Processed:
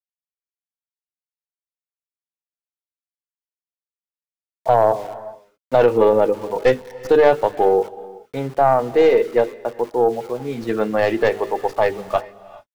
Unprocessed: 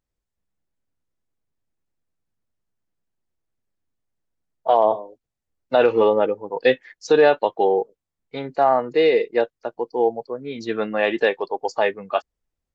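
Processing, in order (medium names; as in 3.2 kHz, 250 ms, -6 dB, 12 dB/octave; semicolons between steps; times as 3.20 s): tracing distortion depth 0.13 ms; low-pass 1.3 kHz 6 dB/octave; peaking EQ 130 Hz +6.5 dB 0.33 oct; hum notches 50/100/150/200/250/300/350/400/450 Hz; in parallel at -2 dB: peak limiter -14 dBFS, peak gain reduction 8.5 dB; on the sum: small samples zeroed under -36.5 dBFS; on a send at -17.5 dB: reverberation, pre-delay 3 ms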